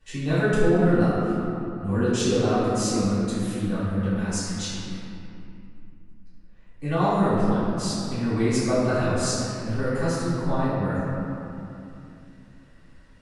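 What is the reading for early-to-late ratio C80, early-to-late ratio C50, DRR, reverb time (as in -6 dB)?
-1.5 dB, -3.5 dB, -15.0 dB, 2.7 s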